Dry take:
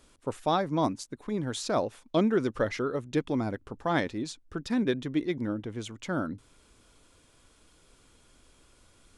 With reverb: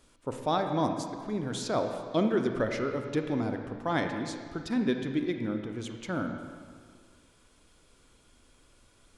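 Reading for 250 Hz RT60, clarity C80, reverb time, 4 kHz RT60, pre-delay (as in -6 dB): 1.9 s, 6.5 dB, 1.9 s, 1.6 s, 32 ms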